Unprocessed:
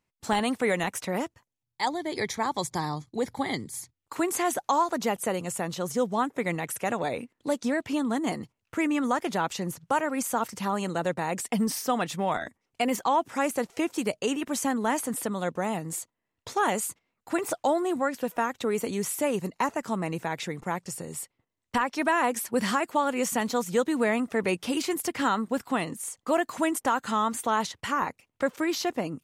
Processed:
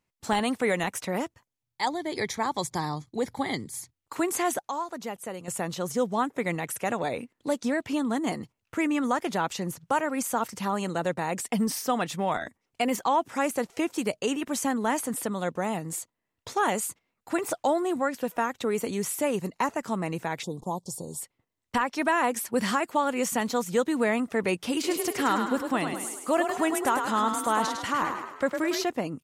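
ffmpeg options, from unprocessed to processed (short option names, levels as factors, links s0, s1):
-filter_complex "[0:a]asplit=3[s0][s1][s2];[s0]afade=t=out:st=20.42:d=0.02[s3];[s1]asuperstop=centerf=1900:order=12:qfactor=0.82,afade=t=in:st=20.42:d=0.02,afade=t=out:st=21.2:d=0.02[s4];[s2]afade=t=in:st=21.2:d=0.02[s5];[s3][s4][s5]amix=inputs=3:normalize=0,asplit=3[s6][s7][s8];[s6]afade=t=out:st=24.83:d=0.02[s9];[s7]asplit=7[s10][s11][s12][s13][s14][s15][s16];[s11]adelay=104,afreqshift=33,volume=0.501[s17];[s12]adelay=208,afreqshift=66,volume=0.257[s18];[s13]adelay=312,afreqshift=99,volume=0.13[s19];[s14]adelay=416,afreqshift=132,volume=0.0668[s20];[s15]adelay=520,afreqshift=165,volume=0.0339[s21];[s16]adelay=624,afreqshift=198,volume=0.0174[s22];[s10][s17][s18][s19][s20][s21][s22]amix=inputs=7:normalize=0,afade=t=in:st=24.83:d=0.02,afade=t=out:st=28.82:d=0.02[s23];[s8]afade=t=in:st=28.82:d=0.02[s24];[s9][s23][s24]amix=inputs=3:normalize=0,asplit=3[s25][s26][s27];[s25]atrim=end=4.592[s28];[s26]atrim=start=4.588:end=5.482,asetpts=PTS-STARTPTS,volume=0.398[s29];[s27]atrim=start=5.478[s30];[s28][s29]acrossfade=d=0.004:c1=hsin:c2=hsin[s31];[s31][s30]acrossfade=d=0.004:c1=hsin:c2=hsin"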